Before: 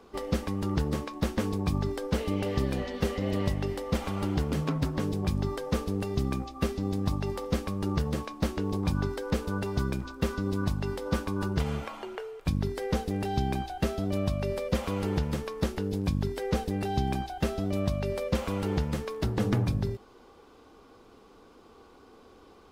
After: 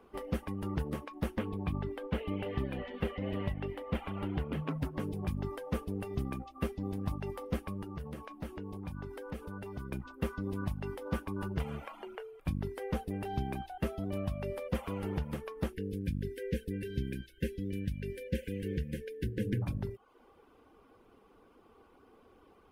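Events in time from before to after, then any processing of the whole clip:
0:01.39–0:04.69: high shelf with overshoot 4,300 Hz −8 dB, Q 1.5
0:07.82–0:09.92: downward compressor 2 to 1, threshold −35 dBFS
0:15.73–0:19.62: linear-phase brick-wall band-stop 550–1,500 Hz
whole clip: reverb reduction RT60 0.52 s; flat-topped bell 5,400 Hz −9.5 dB 1.3 octaves; level −5.5 dB

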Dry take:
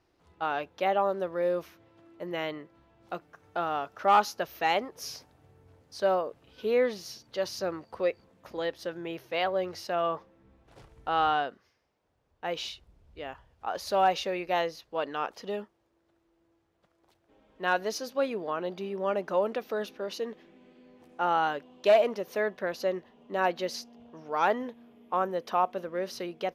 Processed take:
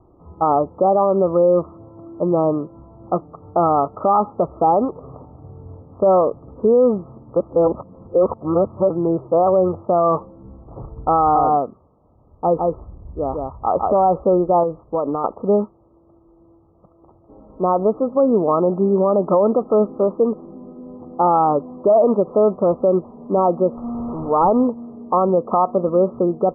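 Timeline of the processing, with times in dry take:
0:07.36–0:08.90: reverse
0:11.19–0:14.03: single-tap delay 159 ms −3.5 dB
0:14.63–0:15.24: downward compressor, threshold −33 dBFS
0:23.77–0:24.67: linear delta modulator 64 kbit/s, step −39.5 dBFS
whole clip: Chebyshev low-pass filter 1,300 Hz, order 10; low-shelf EQ 410 Hz +7.5 dB; boost into a limiter +21.5 dB; level −6.5 dB

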